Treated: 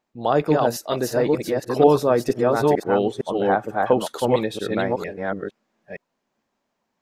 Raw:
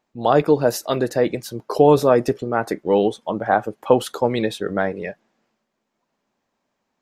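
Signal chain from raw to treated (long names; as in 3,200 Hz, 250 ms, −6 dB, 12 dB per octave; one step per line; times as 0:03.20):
delay that plays each chunk backwards 459 ms, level −1.5 dB
level −3.5 dB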